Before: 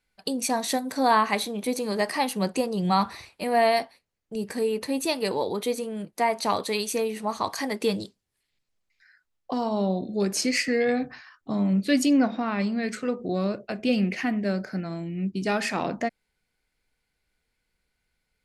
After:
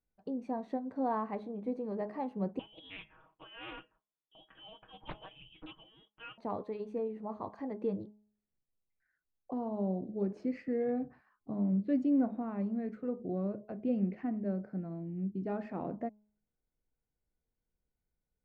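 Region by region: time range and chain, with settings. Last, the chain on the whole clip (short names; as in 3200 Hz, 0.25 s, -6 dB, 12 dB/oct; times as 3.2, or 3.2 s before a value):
2.59–6.38 comb 6.3 ms, depth 74% + inverted band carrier 3500 Hz + Doppler distortion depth 0.67 ms
whole clip: Bessel low-pass 570 Hz, order 2; de-hum 210.2 Hz, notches 5; gain -7 dB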